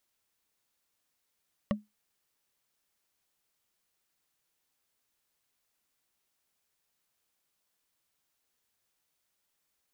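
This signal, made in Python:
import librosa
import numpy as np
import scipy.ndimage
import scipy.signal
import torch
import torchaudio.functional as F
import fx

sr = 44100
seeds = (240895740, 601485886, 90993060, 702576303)

y = fx.strike_wood(sr, length_s=0.45, level_db=-22, body='bar', hz=210.0, decay_s=0.19, tilt_db=3.0, modes=5)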